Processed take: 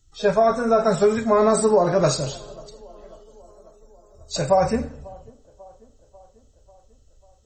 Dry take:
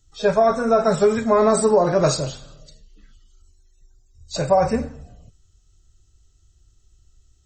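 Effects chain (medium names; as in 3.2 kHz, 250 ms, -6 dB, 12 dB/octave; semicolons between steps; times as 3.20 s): 2.20–4.72 s: treble shelf 4.8 kHz +5 dB; feedback echo behind a band-pass 543 ms, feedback 60%, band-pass 520 Hz, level -23 dB; trim -1 dB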